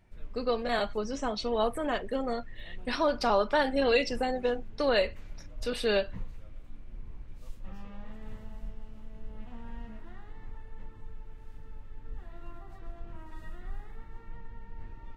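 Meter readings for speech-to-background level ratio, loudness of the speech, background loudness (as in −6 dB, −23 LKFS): 19.5 dB, −29.5 LKFS, −49.0 LKFS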